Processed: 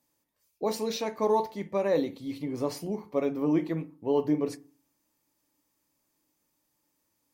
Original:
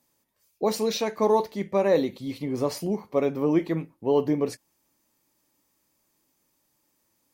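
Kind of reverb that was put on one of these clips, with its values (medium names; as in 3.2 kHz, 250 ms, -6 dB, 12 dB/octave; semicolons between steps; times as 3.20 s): FDN reverb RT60 0.4 s, low-frequency decay 1.35×, high-frequency decay 0.4×, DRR 12 dB; trim -5 dB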